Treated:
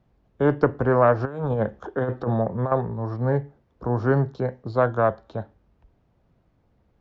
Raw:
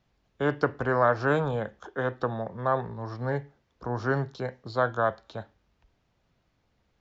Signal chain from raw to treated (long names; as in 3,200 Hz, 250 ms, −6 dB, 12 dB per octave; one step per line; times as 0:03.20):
tilt shelving filter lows +8.5 dB, about 1,500 Hz
0:01.25–0:02.72: compressor whose output falls as the input rises −23 dBFS, ratio −0.5
harmonic generator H 2 −19 dB, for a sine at −4.5 dBFS